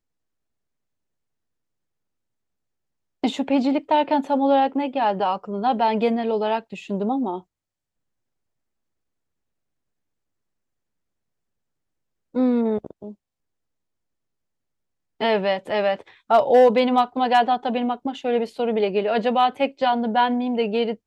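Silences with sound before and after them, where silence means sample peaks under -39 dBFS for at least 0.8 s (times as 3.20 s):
7.41–12.35 s
13.13–15.20 s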